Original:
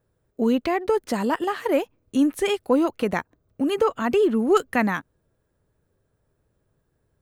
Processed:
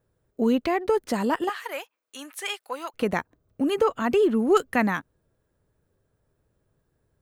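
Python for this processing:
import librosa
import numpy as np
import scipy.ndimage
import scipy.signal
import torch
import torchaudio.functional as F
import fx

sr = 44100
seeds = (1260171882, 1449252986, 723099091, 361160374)

y = fx.highpass(x, sr, hz=1100.0, slope=12, at=(1.49, 2.94))
y = F.gain(torch.from_numpy(y), -1.0).numpy()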